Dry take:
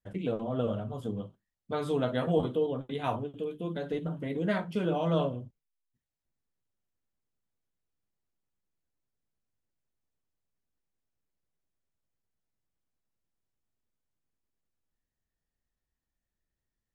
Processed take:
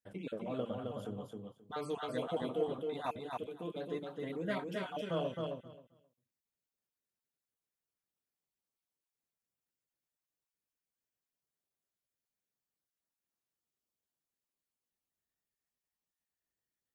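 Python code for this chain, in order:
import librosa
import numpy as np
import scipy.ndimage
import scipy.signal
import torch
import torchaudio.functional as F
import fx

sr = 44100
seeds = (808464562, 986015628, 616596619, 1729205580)

p1 = fx.spec_dropout(x, sr, seeds[0], share_pct=26)
p2 = fx.high_shelf(p1, sr, hz=6800.0, db=5.5)
p3 = 10.0 ** (-29.0 / 20.0) * np.tanh(p2 / 10.0 ** (-29.0 / 20.0))
p4 = p2 + F.gain(torch.from_numpy(p3), -10.0).numpy()
p5 = fx.highpass(p4, sr, hz=150.0, slope=6)
p6 = fx.low_shelf(p5, sr, hz=220.0, db=-4.0)
p7 = p6 + fx.echo_feedback(p6, sr, ms=265, feedback_pct=16, wet_db=-3.5, dry=0)
y = F.gain(torch.from_numpy(p7), -7.0).numpy()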